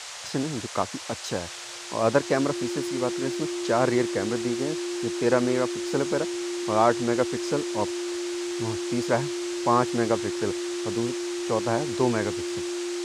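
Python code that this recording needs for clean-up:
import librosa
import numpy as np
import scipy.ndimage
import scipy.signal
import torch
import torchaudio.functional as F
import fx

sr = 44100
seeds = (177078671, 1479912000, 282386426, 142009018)

y = fx.notch(x, sr, hz=350.0, q=30.0)
y = fx.noise_reduce(y, sr, print_start_s=1.43, print_end_s=1.93, reduce_db=30.0)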